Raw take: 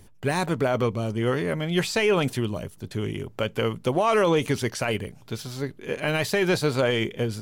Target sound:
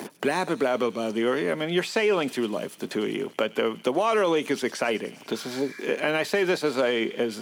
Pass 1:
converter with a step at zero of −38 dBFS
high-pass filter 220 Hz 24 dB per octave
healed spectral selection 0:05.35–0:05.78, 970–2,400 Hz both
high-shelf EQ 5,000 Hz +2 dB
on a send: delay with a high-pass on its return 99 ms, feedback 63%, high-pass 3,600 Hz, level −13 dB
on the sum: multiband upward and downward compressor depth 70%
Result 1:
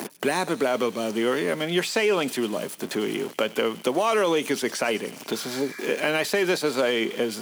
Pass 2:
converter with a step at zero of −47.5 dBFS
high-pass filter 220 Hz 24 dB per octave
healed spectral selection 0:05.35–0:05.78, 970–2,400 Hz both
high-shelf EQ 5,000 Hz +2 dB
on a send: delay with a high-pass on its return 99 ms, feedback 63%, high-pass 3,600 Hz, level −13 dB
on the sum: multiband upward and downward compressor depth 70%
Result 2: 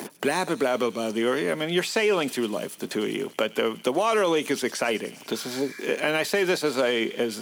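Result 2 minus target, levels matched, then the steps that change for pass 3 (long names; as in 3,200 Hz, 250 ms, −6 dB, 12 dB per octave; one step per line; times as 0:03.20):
8,000 Hz band +4.5 dB
change: high-shelf EQ 5,000 Hz −6 dB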